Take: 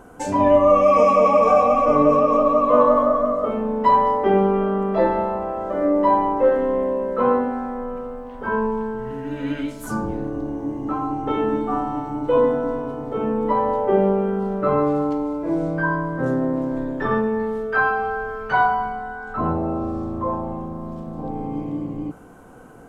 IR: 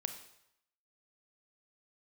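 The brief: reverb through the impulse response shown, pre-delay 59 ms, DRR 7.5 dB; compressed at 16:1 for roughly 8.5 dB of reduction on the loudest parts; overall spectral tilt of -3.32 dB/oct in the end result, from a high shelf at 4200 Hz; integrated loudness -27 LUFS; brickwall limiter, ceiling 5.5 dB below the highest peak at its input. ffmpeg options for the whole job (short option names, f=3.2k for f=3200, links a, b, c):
-filter_complex "[0:a]highshelf=f=4.2k:g=-4.5,acompressor=threshold=-19dB:ratio=16,alimiter=limit=-16.5dB:level=0:latency=1,asplit=2[a][b];[1:a]atrim=start_sample=2205,adelay=59[c];[b][c]afir=irnorm=-1:irlink=0,volume=-7.5dB[d];[a][d]amix=inputs=2:normalize=0,volume=-2dB"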